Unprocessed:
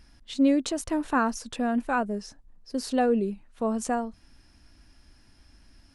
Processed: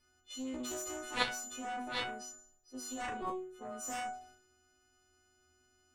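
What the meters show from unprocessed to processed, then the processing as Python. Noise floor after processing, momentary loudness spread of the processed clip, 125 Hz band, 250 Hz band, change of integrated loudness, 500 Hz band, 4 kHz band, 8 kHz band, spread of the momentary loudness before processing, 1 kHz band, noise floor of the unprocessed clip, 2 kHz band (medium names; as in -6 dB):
-72 dBFS, 14 LU, no reading, -19.0 dB, -12.0 dB, -15.5 dB, -1.0 dB, -2.5 dB, 12 LU, -10.0 dB, -59 dBFS, -6.0 dB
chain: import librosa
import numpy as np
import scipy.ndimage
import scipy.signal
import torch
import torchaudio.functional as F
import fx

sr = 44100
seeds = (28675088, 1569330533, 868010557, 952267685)

p1 = fx.freq_snap(x, sr, grid_st=3)
p2 = fx.transient(p1, sr, attack_db=-3, sustain_db=5)
p3 = fx.level_steps(p2, sr, step_db=17)
p4 = p2 + (p3 * 10.0 ** (2.0 / 20.0))
p5 = fx.resonator_bank(p4, sr, root=40, chord='fifth', decay_s=0.6)
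p6 = fx.small_body(p5, sr, hz=(380.0, 1200.0, 3600.0), ring_ms=30, db=10)
p7 = fx.cheby_harmonics(p6, sr, harmonics=(3, 6), levels_db=(-7, -30), full_scale_db=-17.0)
y = p7 * 10.0 ** (5.0 / 20.0)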